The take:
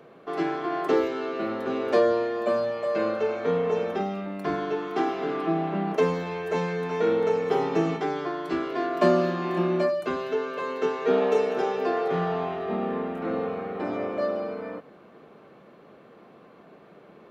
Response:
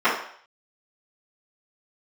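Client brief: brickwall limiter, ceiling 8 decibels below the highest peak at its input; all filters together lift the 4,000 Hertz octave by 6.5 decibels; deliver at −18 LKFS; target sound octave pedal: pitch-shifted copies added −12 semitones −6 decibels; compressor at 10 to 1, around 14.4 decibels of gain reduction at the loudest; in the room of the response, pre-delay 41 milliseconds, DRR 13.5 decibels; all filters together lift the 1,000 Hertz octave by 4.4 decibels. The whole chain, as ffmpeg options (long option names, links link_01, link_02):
-filter_complex "[0:a]equalizer=frequency=1000:width_type=o:gain=5.5,equalizer=frequency=4000:width_type=o:gain=8,acompressor=threshold=-29dB:ratio=10,alimiter=level_in=1.5dB:limit=-24dB:level=0:latency=1,volume=-1.5dB,asplit=2[link_01][link_02];[1:a]atrim=start_sample=2205,adelay=41[link_03];[link_02][link_03]afir=irnorm=-1:irlink=0,volume=-34dB[link_04];[link_01][link_04]amix=inputs=2:normalize=0,asplit=2[link_05][link_06];[link_06]asetrate=22050,aresample=44100,atempo=2,volume=-6dB[link_07];[link_05][link_07]amix=inputs=2:normalize=0,volume=15dB"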